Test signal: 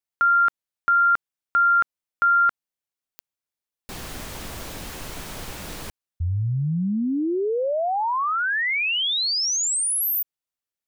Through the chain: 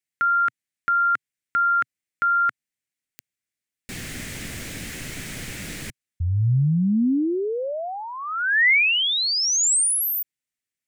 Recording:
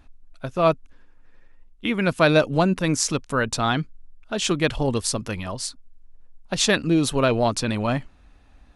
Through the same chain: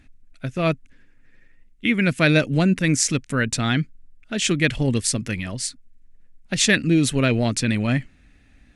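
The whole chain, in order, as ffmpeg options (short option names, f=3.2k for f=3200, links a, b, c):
-af "equalizer=f=125:t=o:w=1:g=7,equalizer=f=250:t=o:w=1:g=6,equalizer=f=1k:t=o:w=1:g=-10,equalizer=f=2k:t=o:w=1:g=12,equalizer=f=8k:t=o:w=1:g=7,volume=-3dB"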